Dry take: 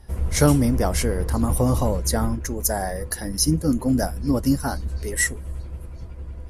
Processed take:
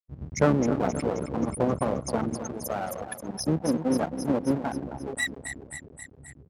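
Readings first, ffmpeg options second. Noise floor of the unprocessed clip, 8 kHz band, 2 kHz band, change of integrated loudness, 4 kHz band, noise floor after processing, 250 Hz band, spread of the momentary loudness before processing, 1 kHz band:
−36 dBFS, −11.5 dB, −4.5 dB, −6.0 dB, −9.0 dB, −52 dBFS, −4.5 dB, 15 LU, −2.5 dB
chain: -filter_complex "[0:a]afftfilt=real='re*gte(hypot(re,im),0.158)':imag='im*gte(hypot(re,im),0.158)':win_size=1024:overlap=0.75,aecho=1:1:265|530|795|1060|1325|1590|1855:0.316|0.183|0.106|0.0617|0.0358|0.0208|0.012,acrossover=split=4200[link_01][link_02];[link_01]aeval=exprs='max(val(0),0)':channel_layout=same[link_03];[link_02]acompressor=threshold=-39dB:ratio=6[link_04];[link_03][link_04]amix=inputs=2:normalize=0,highpass=150,volume=1dB"

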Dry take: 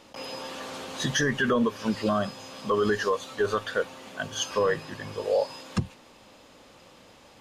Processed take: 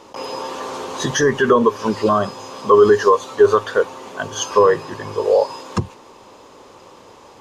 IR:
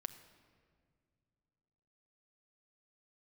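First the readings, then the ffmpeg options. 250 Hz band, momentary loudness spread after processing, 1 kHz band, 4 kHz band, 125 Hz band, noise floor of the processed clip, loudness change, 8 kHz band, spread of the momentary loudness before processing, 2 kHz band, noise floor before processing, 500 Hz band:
+6.5 dB, 15 LU, +12.5 dB, +4.0 dB, +5.5 dB, −45 dBFS, +11.0 dB, +7.5 dB, 12 LU, +5.0 dB, −54 dBFS, +12.5 dB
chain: -af "equalizer=frequency=100:width_type=o:width=0.67:gain=5,equalizer=frequency=400:width_type=o:width=0.67:gain=12,equalizer=frequency=1000:width_type=o:width=0.67:gain=12,equalizer=frequency=6300:width_type=o:width=0.67:gain=5,volume=2.5dB"

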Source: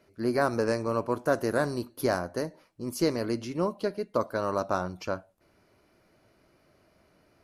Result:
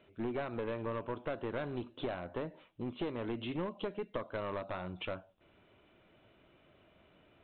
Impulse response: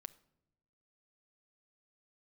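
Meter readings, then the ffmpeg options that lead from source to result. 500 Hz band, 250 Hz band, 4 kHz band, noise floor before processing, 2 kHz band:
−10.5 dB, −9.0 dB, −7.0 dB, −66 dBFS, −10.0 dB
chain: -af "acompressor=threshold=-31dB:ratio=6,aexciter=amount=3.2:drive=2.8:freq=2700,aresample=8000,aeval=exprs='clip(val(0),-1,0.0224)':channel_layout=same,aresample=44100,volume=-1dB"

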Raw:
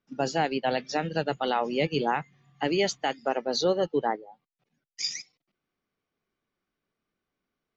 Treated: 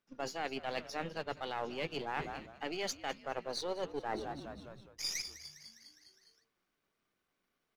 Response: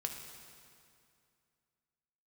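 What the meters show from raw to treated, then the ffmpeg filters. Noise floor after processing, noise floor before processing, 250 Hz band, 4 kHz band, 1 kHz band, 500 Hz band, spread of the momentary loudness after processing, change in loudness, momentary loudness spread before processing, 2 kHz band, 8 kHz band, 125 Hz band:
−84 dBFS, below −85 dBFS, −13.5 dB, −8.5 dB, −11.0 dB, −12.5 dB, 13 LU, −11.5 dB, 6 LU, −8.5 dB, can't be measured, −13.0 dB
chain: -filter_complex "[0:a]aeval=exprs='if(lt(val(0),0),0.447*val(0),val(0))':channel_layout=same,lowshelf=frequency=360:gain=-7,asplit=7[link_01][link_02][link_03][link_04][link_05][link_06][link_07];[link_02]adelay=204,afreqshift=-76,volume=-19dB[link_08];[link_03]adelay=408,afreqshift=-152,volume=-23dB[link_09];[link_04]adelay=612,afreqshift=-228,volume=-27dB[link_10];[link_05]adelay=816,afreqshift=-304,volume=-31dB[link_11];[link_06]adelay=1020,afreqshift=-380,volume=-35.1dB[link_12];[link_07]adelay=1224,afreqshift=-456,volume=-39.1dB[link_13];[link_01][link_08][link_09][link_10][link_11][link_12][link_13]amix=inputs=7:normalize=0,areverse,acompressor=threshold=-41dB:ratio=6,areverse,volume=5.5dB"

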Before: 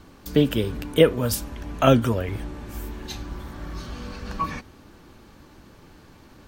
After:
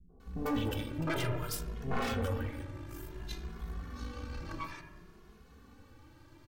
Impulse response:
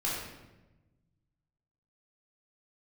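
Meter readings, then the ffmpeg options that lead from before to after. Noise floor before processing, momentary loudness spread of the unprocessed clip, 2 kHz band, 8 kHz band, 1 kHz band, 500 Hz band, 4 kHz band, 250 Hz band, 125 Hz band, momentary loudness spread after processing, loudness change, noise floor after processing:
−50 dBFS, 17 LU, −8.0 dB, −11.0 dB, −11.0 dB, −17.0 dB, −12.0 dB, −13.0 dB, −10.5 dB, 12 LU, −14.0 dB, −58 dBFS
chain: -filter_complex "[0:a]acrossover=split=230|740[link_01][link_02][link_03];[link_02]adelay=90[link_04];[link_03]adelay=200[link_05];[link_01][link_04][link_05]amix=inputs=3:normalize=0,aeval=exprs='0.119*(abs(mod(val(0)/0.119+3,4)-2)-1)':channel_layout=same,asplit=2[link_06][link_07];[1:a]atrim=start_sample=2205,lowpass=2200[link_08];[link_07][link_08]afir=irnorm=-1:irlink=0,volume=-9.5dB[link_09];[link_06][link_09]amix=inputs=2:normalize=0,aeval=exprs='(tanh(11.2*val(0)+0.65)-tanh(0.65))/11.2':channel_layout=same,asplit=2[link_10][link_11];[link_11]adelay=2.4,afreqshift=0.57[link_12];[link_10][link_12]amix=inputs=2:normalize=1,volume=-4dB"

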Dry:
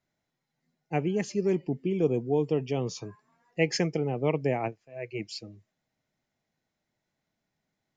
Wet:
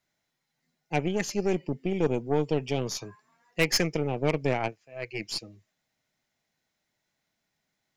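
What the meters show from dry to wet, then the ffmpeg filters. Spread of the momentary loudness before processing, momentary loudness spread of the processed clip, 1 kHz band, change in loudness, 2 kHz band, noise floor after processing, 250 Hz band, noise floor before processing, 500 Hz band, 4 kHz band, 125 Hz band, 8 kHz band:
13 LU, 11 LU, +2.0 dB, +0.5 dB, +4.5 dB, −81 dBFS, −0.5 dB, −84 dBFS, −0.5 dB, +6.5 dB, 0.0 dB, can't be measured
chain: -af "tiltshelf=frequency=970:gain=-4.5,aeval=exprs='0.266*(cos(1*acos(clip(val(0)/0.266,-1,1)))-cos(1*PI/2))+0.0422*(cos(5*acos(clip(val(0)/0.266,-1,1)))-cos(5*PI/2))+0.0211*(cos(7*acos(clip(val(0)/0.266,-1,1)))-cos(7*PI/2))+0.0266*(cos(8*acos(clip(val(0)/0.266,-1,1)))-cos(8*PI/2))':channel_layout=same"

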